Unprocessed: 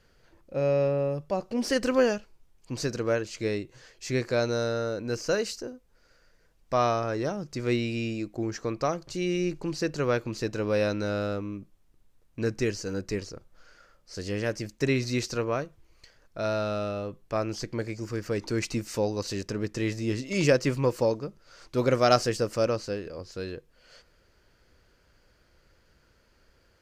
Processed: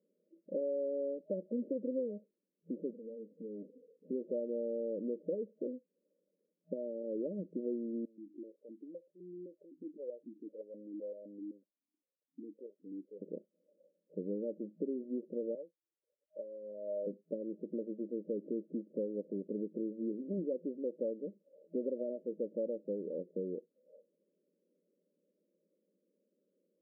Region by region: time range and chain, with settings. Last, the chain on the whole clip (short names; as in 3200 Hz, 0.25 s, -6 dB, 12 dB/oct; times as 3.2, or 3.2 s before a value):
2.91–4.11 minimum comb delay 4.2 ms + compressor 20:1, threshold -42 dBFS
8.05–13.22 compressor 2:1, threshold -42 dBFS + vowel sequencer 7.8 Hz
15.55–17.07 spectral contrast raised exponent 1.7 + HPF 580 Hz
whole clip: spectral noise reduction 12 dB; compressor 6:1, threshold -36 dBFS; FFT band-pass 170–620 Hz; gain +2.5 dB